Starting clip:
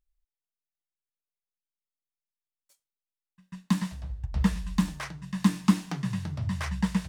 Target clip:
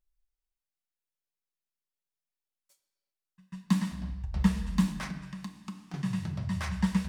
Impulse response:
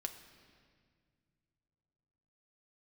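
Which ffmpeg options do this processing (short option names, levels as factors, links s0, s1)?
-filter_complex "[0:a]asettb=1/sr,asplit=3[s0][s1][s2];[s0]atrim=end=5.094[s3];[s1]atrim=start=5.09:end=5.94,asetpts=PTS-STARTPTS,afade=t=in:d=0.004:c=qsin,afade=t=out:st=0.846:d=0.004:c=qsin,acompressor=threshold=0.0112:ratio=6[s4];[s2]atrim=start=5.936[s5];[s3][s4]acrossfade=d=0.004:c1=hsin:c2=qsin[s6];[s6][s5]acrossfade=d=0.004:c1=qsin:c2=hsin[s7];[1:a]atrim=start_sample=2205,afade=t=out:st=0.44:d=0.01,atrim=end_sample=19845[s8];[s7][s8]afir=irnorm=-1:irlink=0"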